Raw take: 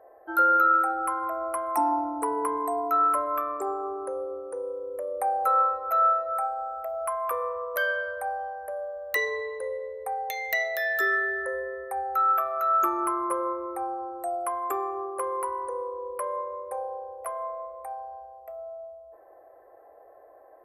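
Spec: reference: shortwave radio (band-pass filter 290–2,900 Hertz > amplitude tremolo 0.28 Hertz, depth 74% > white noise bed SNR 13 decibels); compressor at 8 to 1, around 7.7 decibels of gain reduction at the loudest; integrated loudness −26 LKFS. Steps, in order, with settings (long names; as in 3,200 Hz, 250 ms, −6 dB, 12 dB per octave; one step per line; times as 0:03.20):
downward compressor 8 to 1, threshold −25 dBFS
band-pass filter 290–2,900 Hz
amplitude tremolo 0.28 Hz, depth 74%
white noise bed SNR 13 dB
level +8 dB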